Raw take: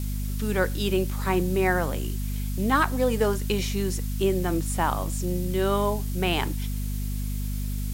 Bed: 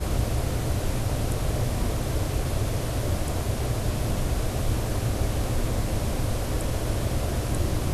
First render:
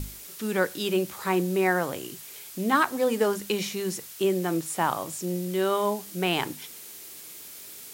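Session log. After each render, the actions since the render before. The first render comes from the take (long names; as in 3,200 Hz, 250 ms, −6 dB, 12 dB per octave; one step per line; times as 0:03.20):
mains-hum notches 50/100/150/200/250 Hz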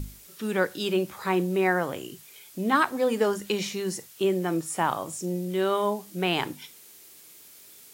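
noise reduction from a noise print 7 dB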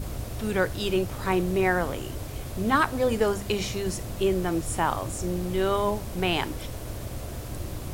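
mix in bed −9 dB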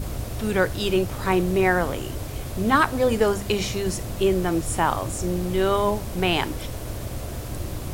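level +3.5 dB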